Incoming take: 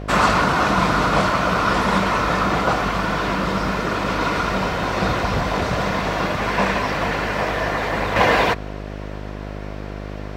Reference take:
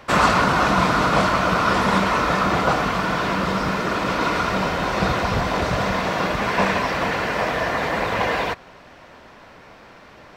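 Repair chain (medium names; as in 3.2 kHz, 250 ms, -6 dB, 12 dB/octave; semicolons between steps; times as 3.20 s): de-hum 50.9 Hz, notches 14; gain correction -6 dB, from 8.16 s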